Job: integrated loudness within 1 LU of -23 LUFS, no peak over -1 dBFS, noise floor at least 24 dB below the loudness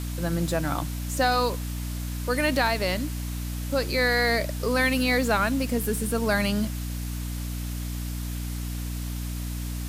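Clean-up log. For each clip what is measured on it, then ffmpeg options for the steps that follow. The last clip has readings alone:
hum 60 Hz; harmonics up to 300 Hz; hum level -29 dBFS; noise floor -32 dBFS; noise floor target -51 dBFS; loudness -26.5 LUFS; peak -10.0 dBFS; loudness target -23.0 LUFS
-> -af "bandreject=f=60:t=h:w=4,bandreject=f=120:t=h:w=4,bandreject=f=180:t=h:w=4,bandreject=f=240:t=h:w=4,bandreject=f=300:t=h:w=4"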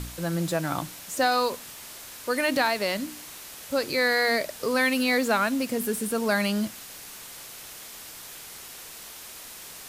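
hum none; noise floor -43 dBFS; noise floor target -50 dBFS
-> -af "afftdn=nr=7:nf=-43"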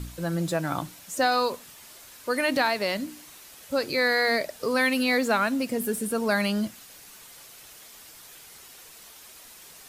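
noise floor -49 dBFS; noise floor target -50 dBFS
-> -af "afftdn=nr=6:nf=-49"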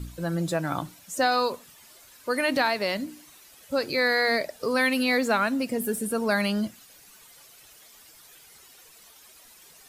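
noise floor -53 dBFS; loudness -25.5 LUFS; peak -11.5 dBFS; loudness target -23.0 LUFS
-> -af "volume=2.5dB"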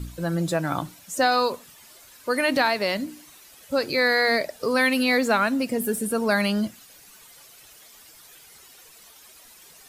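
loudness -23.0 LUFS; peak -9.0 dBFS; noise floor -50 dBFS

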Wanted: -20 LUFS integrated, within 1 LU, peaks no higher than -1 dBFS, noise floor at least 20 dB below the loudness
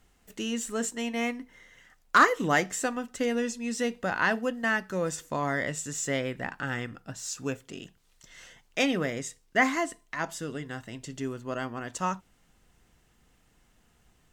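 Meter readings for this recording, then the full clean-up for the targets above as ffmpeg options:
loudness -29.5 LUFS; peak -11.0 dBFS; loudness target -20.0 LUFS
-> -af "volume=9.5dB"

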